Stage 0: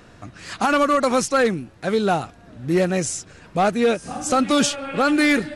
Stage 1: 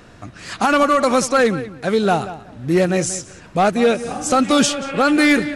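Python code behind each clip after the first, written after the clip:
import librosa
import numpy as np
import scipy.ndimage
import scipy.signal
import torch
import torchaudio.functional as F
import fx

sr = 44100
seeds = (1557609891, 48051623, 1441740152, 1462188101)

y = fx.echo_filtered(x, sr, ms=184, feedback_pct=18, hz=3800.0, wet_db=-14)
y = y * librosa.db_to_amplitude(3.0)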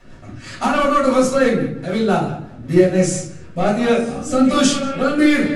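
y = fx.rotary_switch(x, sr, hz=6.0, then_hz=1.2, switch_at_s=2.23)
y = fx.room_shoebox(y, sr, seeds[0], volume_m3=310.0, walls='furnished', distance_m=6.7)
y = y * librosa.db_to_amplitude(-9.5)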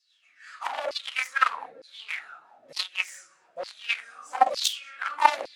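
y = fx.cheby_harmonics(x, sr, harmonics=(3, 5), levels_db=(-8, -43), full_scale_db=-1.0)
y = fx.filter_lfo_highpass(y, sr, shape='saw_down', hz=1.1, low_hz=530.0, high_hz=4900.0, q=7.1)
y = y * librosa.db_to_amplitude(-2.0)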